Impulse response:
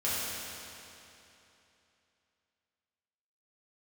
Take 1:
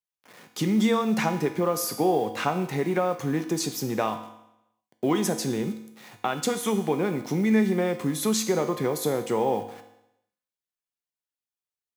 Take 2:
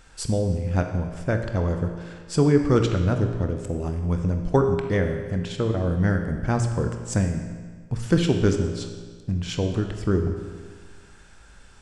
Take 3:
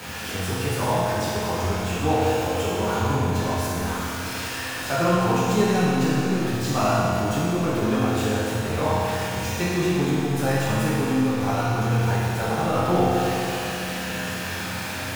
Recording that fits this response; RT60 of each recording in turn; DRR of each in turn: 3; 0.85, 1.6, 3.0 seconds; 6.5, 4.5, −10.0 decibels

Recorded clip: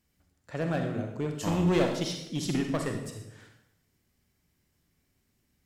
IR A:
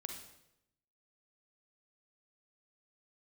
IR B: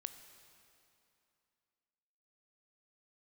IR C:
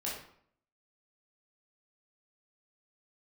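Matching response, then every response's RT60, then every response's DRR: A; 0.85, 2.7, 0.60 seconds; 3.5, 9.0, −6.0 decibels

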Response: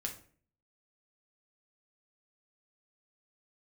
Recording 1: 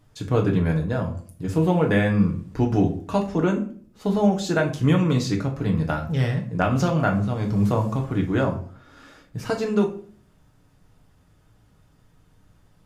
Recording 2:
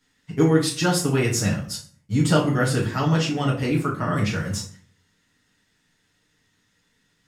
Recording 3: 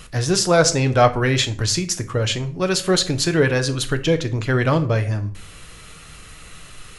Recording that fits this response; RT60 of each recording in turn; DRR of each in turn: 1; 0.45, 0.45, 0.45 seconds; 1.0, −5.5, 8.0 decibels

